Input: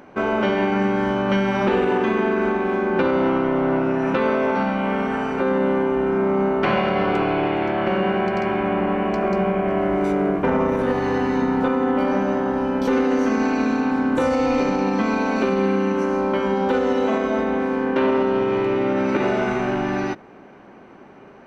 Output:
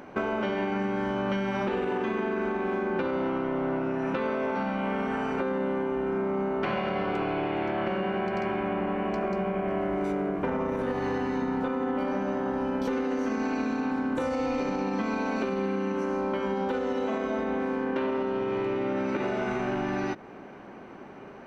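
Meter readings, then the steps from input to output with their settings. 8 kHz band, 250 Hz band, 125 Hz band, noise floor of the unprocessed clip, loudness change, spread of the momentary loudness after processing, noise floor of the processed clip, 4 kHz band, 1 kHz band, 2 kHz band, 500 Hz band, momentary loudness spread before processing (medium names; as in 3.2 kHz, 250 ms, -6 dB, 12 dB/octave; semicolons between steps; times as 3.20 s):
no reading, -8.5 dB, -8.5 dB, -45 dBFS, -8.5 dB, 1 LU, -45 dBFS, -8.5 dB, -8.5 dB, -8.0 dB, -8.5 dB, 2 LU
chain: compression, threshold -26 dBFS, peak gain reduction 10.5 dB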